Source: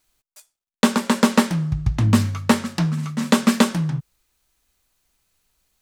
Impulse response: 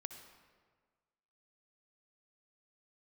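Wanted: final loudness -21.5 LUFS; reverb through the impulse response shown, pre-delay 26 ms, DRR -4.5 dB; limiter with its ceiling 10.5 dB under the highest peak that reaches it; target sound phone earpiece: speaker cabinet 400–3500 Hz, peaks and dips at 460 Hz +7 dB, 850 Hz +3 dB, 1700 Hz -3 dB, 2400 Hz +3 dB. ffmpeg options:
-filter_complex "[0:a]alimiter=limit=-12.5dB:level=0:latency=1,asplit=2[a][b];[1:a]atrim=start_sample=2205,adelay=26[c];[b][c]afir=irnorm=-1:irlink=0,volume=8dB[d];[a][d]amix=inputs=2:normalize=0,highpass=400,equalizer=f=460:t=q:w=4:g=7,equalizer=f=850:t=q:w=4:g=3,equalizer=f=1.7k:t=q:w=4:g=-3,equalizer=f=2.4k:t=q:w=4:g=3,lowpass=f=3.5k:w=0.5412,lowpass=f=3.5k:w=1.3066,volume=3.5dB"

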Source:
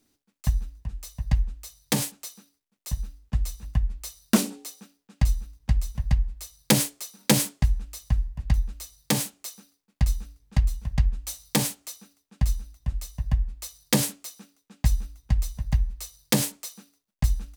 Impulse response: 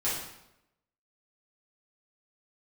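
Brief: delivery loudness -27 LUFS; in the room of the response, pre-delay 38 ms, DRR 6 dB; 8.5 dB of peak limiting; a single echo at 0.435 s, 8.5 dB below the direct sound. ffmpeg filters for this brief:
-filter_complex "[0:a]alimiter=limit=-13.5dB:level=0:latency=1,aecho=1:1:435:0.376,asplit=2[a][b];[1:a]atrim=start_sample=2205,adelay=38[c];[b][c]afir=irnorm=-1:irlink=0,volume=-14dB[d];[a][d]amix=inputs=2:normalize=0,volume=2dB"

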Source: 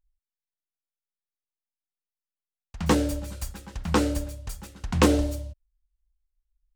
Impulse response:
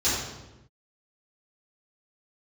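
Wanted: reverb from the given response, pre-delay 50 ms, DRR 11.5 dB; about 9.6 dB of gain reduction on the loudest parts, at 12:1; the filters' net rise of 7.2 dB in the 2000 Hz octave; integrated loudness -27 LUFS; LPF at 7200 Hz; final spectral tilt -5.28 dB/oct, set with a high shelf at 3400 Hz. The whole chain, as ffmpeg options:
-filter_complex "[0:a]lowpass=7.2k,equalizer=f=2k:t=o:g=8,highshelf=f=3.4k:g=4,acompressor=threshold=-22dB:ratio=12,asplit=2[a][b];[1:a]atrim=start_sample=2205,adelay=50[c];[b][c]afir=irnorm=-1:irlink=0,volume=-25dB[d];[a][d]amix=inputs=2:normalize=0,volume=3dB"

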